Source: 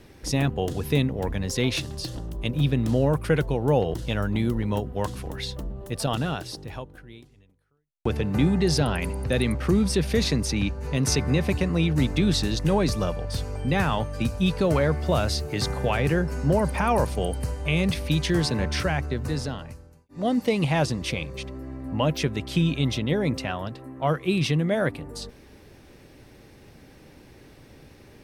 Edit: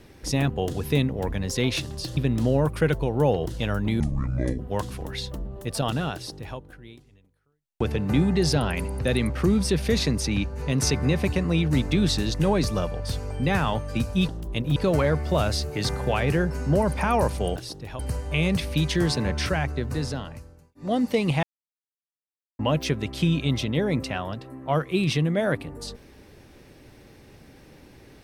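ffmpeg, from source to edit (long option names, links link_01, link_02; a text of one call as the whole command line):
ffmpeg -i in.wav -filter_complex "[0:a]asplit=10[link_01][link_02][link_03][link_04][link_05][link_06][link_07][link_08][link_09][link_10];[link_01]atrim=end=2.172[link_11];[link_02]atrim=start=2.648:end=4.484[link_12];[link_03]atrim=start=4.48:end=4.84,asetpts=PTS-STARTPTS,asetrate=26901,aresample=44100,atrim=end_sample=26026,asetpts=PTS-STARTPTS[link_13];[link_04]atrim=start=4.836:end=14.532[link_14];[link_05]atrim=start=2.168:end=2.652[link_15];[link_06]atrim=start=14.528:end=17.332[link_16];[link_07]atrim=start=6.388:end=6.822[link_17];[link_08]atrim=start=17.328:end=20.77,asetpts=PTS-STARTPTS,afade=type=out:start_time=3.438:duration=0.004:curve=hsin[link_18];[link_09]atrim=start=20.77:end=21.93,asetpts=PTS-STARTPTS,volume=0[link_19];[link_10]atrim=start=21.93,asetpts=PTS-STARTPTS,afade=type=in:duration=0.004:curve=hsin[link_20];[link_11][link_12]acrossfade=duration=0.004:curve1=hsin:curve2=hsin[link_21];[link_21][link_13]acrossfade=duration=0.004:curve1=hsin:curve2=hsin[link_22];[link_22][link_14]acrossfade=duration=0.004:curve1=hsin:curve2=hsin[link_23];[link_23][link_15]acrossfade=duration=0.004:curve1=hsin:curve2=hsin[link_24];[link_24][link_16]acrossfade=duration=0.004:curve1=hsin:curve2=hsin[link_25];[link_25][link_17]acrossfade=duration=0.004:curve1=hsin:curve2=hsin[link_26];[link_18][link_19][link_20]concat=n=3:v=0:a=1[link_27];[link_26][link_27]acrossfade=duration=0.004:curve1=hsin:curve2=hsin" out.wav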